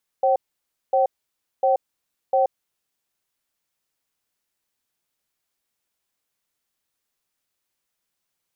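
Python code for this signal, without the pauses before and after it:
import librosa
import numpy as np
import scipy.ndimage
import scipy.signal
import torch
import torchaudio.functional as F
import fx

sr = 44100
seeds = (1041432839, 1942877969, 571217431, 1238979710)

y = fx.cadence(sr, length_s=2.44, low_hz=536.0, high_hz=767.0, on_s=0.13, off_s=0.57, level_db=-18.0)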